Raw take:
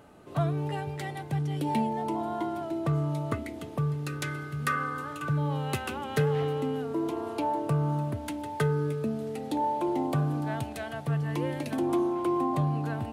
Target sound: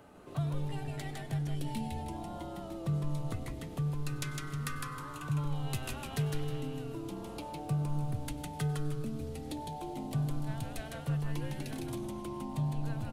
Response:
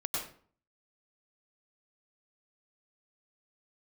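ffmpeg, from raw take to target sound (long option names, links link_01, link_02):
-filter_complex "[0:a]acrossover=split=180|3000[link_01][link_02][link_03];[link_02]acompressor=threshold=-43dB:ratio=4[link_04];[link_01][link_04][link_03]amix=inputs=3:normalize=0,asplit=5[link_05][link_06][link_07][link_08][link_09];[link_06]adelay=157,afreqshift=-140,volume=-3dB[link_10];[link_07]adelay=314,afreqshift=-280,volume=-13.5dB[link_11];[link_08]adelay=471,afreqshift=-420,volume=-23.9dB[link_12];[link_09]adelay=628,afreqshift=-560,volume=-34.4dB[link_13];[link_05][link_10][link_11][link_12][link_13]amix=inputs=5:normalize=0,asplit=2[link_14][link_15];[1:a]atrim=start_sample=2205[link_16];[link_15][link_16]afir=irnorm=-1:irlink=0,volume=-19.5dB[link_17];[link_14][link_17]amix=inputs=2:normalize=0,volume=-3dB"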